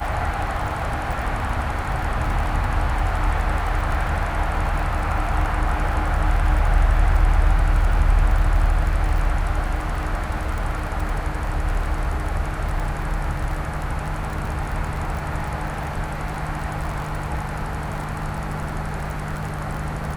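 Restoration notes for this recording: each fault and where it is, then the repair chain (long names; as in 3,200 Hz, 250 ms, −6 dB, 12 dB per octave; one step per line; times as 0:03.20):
surface crackle 33 per second −27 dBFS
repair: click removal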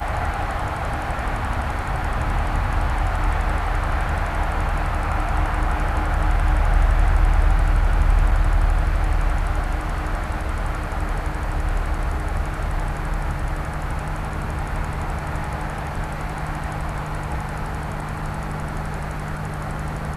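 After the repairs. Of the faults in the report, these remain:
none of them is left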